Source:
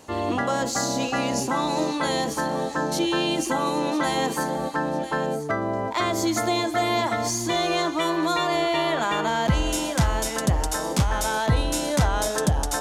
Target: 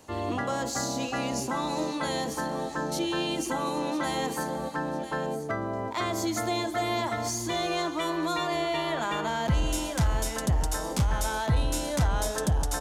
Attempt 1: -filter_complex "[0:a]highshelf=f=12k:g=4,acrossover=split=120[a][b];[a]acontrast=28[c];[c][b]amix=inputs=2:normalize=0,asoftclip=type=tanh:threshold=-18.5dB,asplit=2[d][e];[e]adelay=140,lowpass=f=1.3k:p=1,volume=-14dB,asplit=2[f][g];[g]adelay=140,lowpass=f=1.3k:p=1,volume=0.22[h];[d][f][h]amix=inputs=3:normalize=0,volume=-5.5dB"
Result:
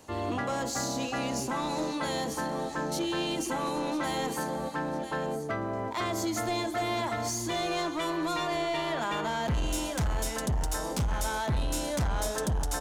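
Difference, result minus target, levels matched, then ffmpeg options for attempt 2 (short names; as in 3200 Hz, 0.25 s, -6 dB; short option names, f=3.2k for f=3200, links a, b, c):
soft clip: distortion +12 dB
-filter_complex "[0:a]highshelf=f=12k:g=4,acrossover=split=120[a][b];[a]acontrast=28[c];[c][b]amix=inputs=2:normalize=0,asoftclip=type=tanh:threshold=-9dB,asplit=2[d][e];[e]adelay=140,lowpass=f=1.3k:p=1,volume=-14dB,asplit=2[f][g];[g]adelay=140,lowpass=f=1.3k:p=1,volume=0.22[h];[d][f][h]amix=inputs=3:normalize=0,volume=-5.5dB"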